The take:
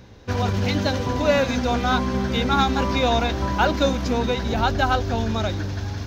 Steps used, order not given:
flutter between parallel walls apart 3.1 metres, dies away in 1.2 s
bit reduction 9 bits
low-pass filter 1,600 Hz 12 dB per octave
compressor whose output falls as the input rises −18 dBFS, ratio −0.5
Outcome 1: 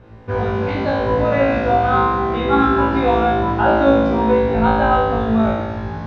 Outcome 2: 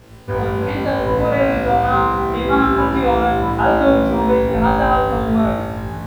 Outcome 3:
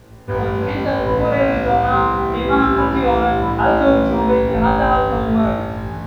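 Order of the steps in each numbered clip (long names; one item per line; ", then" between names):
bit reduction, then low-pass filter, then compressor whose output falls as the input rises, then flutter between parallel walls
low-pass filter, then bit reduction, then compressor whose output falls as the input rises, then flutter between parallel walls
low-pass filter, then compressor whose output falls as the input rises, then flutter between parallel walls, then bit reduction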